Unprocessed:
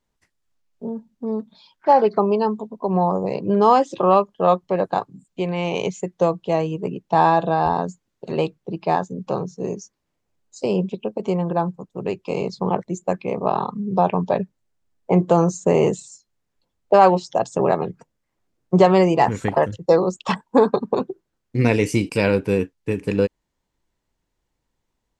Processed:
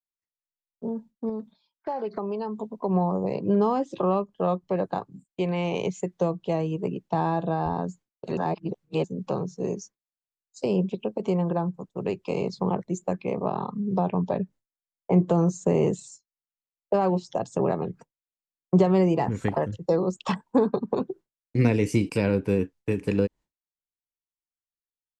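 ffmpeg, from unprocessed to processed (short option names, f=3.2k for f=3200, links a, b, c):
-filter_complex "[0:a]asettb=1/sr,asplit=3[a][b][c];[a]atrim=end=1.294[d];[b]atrim=start=1.29:end=2.6,asetpts=PTS-STARTPTS,afade=t=in:d=0.004:c=qsin,afade=t=out:st=1.306:d=0.004:c=qsin,acompressor=threshold=-28dB:ratio=2.5:attack=3.2:release=140:knee=1:detection=peak[e];[c]atrim=start=2.596[f];[d][e]acrossfade=d=0.004:c1=hsin:c2=qsin[g];[g][f]acrossfade=d=0.004:c1=qsin:c2=hsin,asplit=3[h][i][j];[h]atrim=end=8.372[k];[i]atrim=start=8.368:end=9.042,asetpts=PTS-STARTPTS,areverse[l];[j]atrim=start=9.038[m];[k][l]acrossfade=d=0.004:c1=hsin:c2=hsin[n];[n][m]acrossfade=d=0.004:c1=hsin:c2=hsin,agate=range=-33dB:threshold=-38dB:ratio=3:detection=peak,acrossover=split=360[o][p];[p]acompressor=threshold=-26dB:ratio=3[q];[o][q]amix=inputs=2:normalize=0,adynamicequalizer=threshold=0.0141:dfrequency=2100:dqfactor=0.7:tfrequency=2100:tqfactor=0.7:attack=5:release=100:ratio=0.375:range=2:mode=cutabove:tftype=highshelf,volume=-2dB"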